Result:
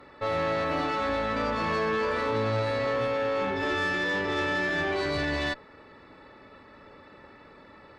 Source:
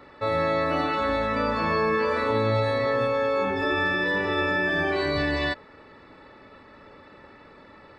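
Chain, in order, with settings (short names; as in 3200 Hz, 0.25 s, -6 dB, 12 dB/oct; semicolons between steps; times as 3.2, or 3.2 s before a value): tube stage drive 22 dB, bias 0.45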